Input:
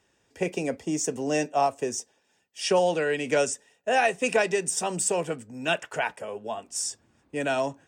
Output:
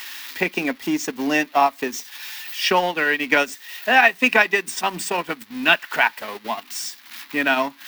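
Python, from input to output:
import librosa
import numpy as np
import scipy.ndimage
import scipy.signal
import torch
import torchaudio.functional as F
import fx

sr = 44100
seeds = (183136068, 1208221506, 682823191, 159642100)

y = x + 0.5 * 10.0 ** (-28.5 / 20.0) * np.diff(np.sign(x), prepend=np.sign(x[:1]))
y = fx.transient(y, sr, attack_db=2, sustain_db=-11)
y = fx.graphic_eq_10(y, sr, hz=(125, 250, 500, 1000, 2000, 4000, 8000), db=(-12, 11, -8, 9, 10, 8, -11))
y = y * librosa.db_to_amplitude(1.5)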